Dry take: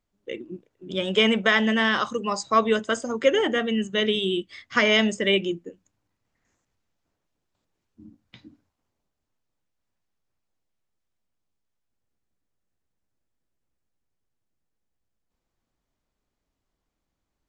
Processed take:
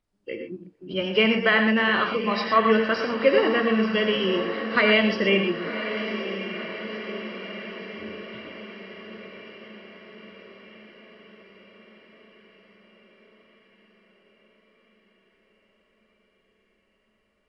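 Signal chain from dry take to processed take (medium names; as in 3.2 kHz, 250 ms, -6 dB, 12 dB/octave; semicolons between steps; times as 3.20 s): knee-point frequency compression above 2.5 kHz 1.5:1; echo that smears into a reverb 1048 ms, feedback 62%, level -10 dB; gated-style reverb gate 140 ms rising, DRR 5.5 dB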